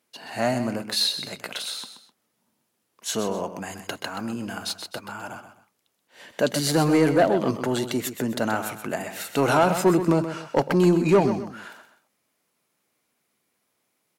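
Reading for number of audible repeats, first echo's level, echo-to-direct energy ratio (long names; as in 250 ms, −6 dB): 2, −10.0 dB, −9.5 dB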